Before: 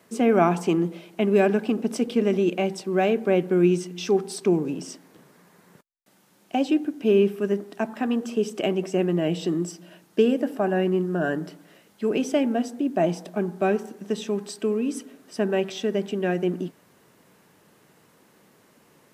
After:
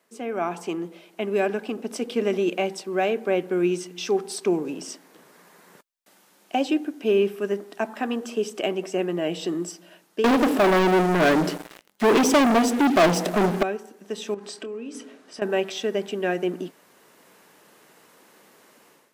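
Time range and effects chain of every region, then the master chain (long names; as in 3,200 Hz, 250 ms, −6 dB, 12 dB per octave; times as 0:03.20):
0:10.24–0:13.63: low-shelf EQ 300 Hz +10 dB + leveller curve on the samples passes 5
0:14.34–0:15.42: downward compressor, threshold −32 dBFS + high-frequency loss of the air 59 metres + double-tracking delay 26 ms −13 dB
whole clip: parametric band 100 Hz −8.5 dB 1.8 octaves; automatic gain control gain up to 13.5 dB; low-shelf EQ 210 Hz −9 dB; level −8 dB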